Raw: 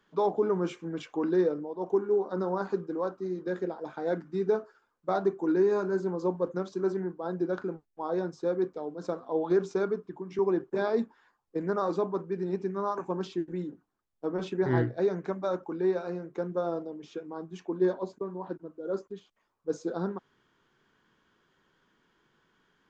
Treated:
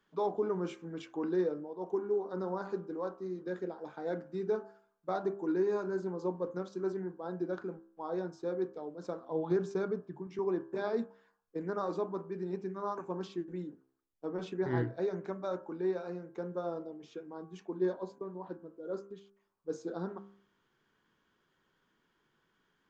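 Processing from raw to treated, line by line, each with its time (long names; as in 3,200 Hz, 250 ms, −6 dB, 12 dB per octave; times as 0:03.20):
0:09.30–0:10.27: parametric band 140 Hz +11 dB
whole clip: hum removal 66.08 Hz, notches 26; level −5.5 dB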